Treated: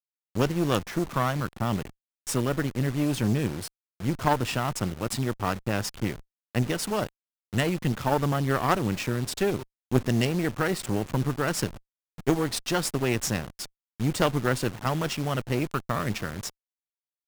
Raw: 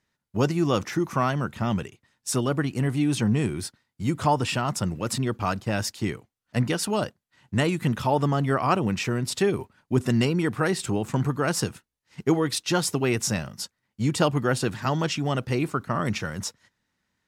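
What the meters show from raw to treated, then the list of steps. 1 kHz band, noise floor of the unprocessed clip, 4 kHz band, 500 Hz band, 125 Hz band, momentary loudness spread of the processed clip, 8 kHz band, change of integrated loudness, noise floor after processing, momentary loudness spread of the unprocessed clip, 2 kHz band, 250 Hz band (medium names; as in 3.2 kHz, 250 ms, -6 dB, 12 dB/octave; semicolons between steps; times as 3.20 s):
-2.0 dB, -81 dBFS, -2.0 dB, -2.0 dB, -2.0 dB, 8 LU, -2.5 dB, -2.0 dB, under -85 dBFS, 9 LU, -1.0 dB, -2.5 dB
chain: send-on-delta sampling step -32 dBFS; Chebyshev shaper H 4 -7 dB, 6 -9 dB, 8 -15 dB, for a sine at -8.5 dBFS; trim -3 dB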